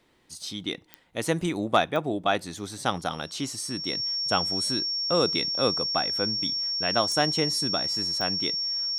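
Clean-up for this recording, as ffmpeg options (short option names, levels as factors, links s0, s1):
-af "adeclick=t=4,bandreject=f=5500:w=30"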